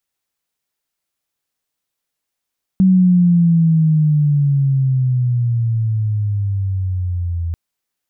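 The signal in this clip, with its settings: sweep logarithmic 190 Hz -> 83 Hz -7.5 dBFS -> -18 dBFS 4.74 s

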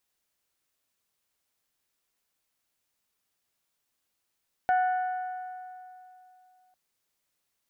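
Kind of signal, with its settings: metal hit bell, length 2.05 s, lowest mode 738 Hz, modes 5, decay 2.85 s, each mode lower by 10 dB, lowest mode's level -20 dB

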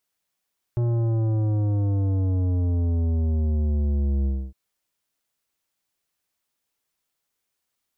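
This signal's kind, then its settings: sub drop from 120 Hz, over 3.76 s, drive 11.5 dB, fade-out 0.27 s, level -21 dB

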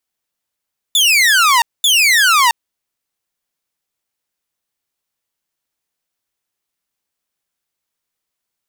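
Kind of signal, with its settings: burst of laser zaps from 3.6 kHz, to 900 Hz, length 0.67 s saw, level -6 dB, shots 2, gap 0.22 s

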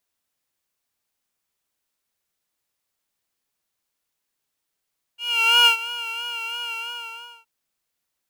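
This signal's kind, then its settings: synth patch with vibrato A#5, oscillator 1 triangle, oscillator 2 sine, interval +19 st, detune 9 cents, oscillator 2 level 0 dB, sub -2 dB, noise -18 dB, filter highpass, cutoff 1.2 kHz, Q 2.1, filter envelope 1 oct, attack 483 ms, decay 0.10 s, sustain -16.5 dB, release 0.72 s, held 1.55 s, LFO 3 Hz, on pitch 46 cents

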